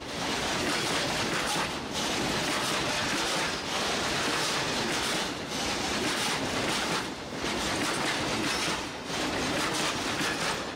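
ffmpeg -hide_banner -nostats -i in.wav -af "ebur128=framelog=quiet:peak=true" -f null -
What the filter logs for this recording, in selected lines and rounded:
Integrated loudness:
  I:         -28.4 LUFS
  Threshold: -38.4 LUFS
Loudness range:
  LRA:         1.3 LU
  Threshold: -48.4 LUFS
  LRA low:   -29.0 LUFS
  LRA high:  -27.7 LUFS
True peak:
  Peak:      -16.3 dBFS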